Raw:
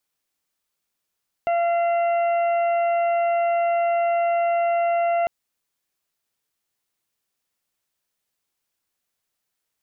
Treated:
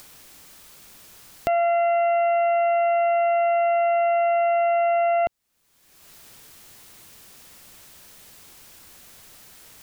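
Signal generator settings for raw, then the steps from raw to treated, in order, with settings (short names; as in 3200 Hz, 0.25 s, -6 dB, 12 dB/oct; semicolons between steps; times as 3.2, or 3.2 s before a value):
steady additive tone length 3.80 s, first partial 685 Hz, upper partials -16/-17/-20 dB, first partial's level -18 dB
low shelf 240 Hz +6.5 dB; upward compressor, threshold -23 dBFS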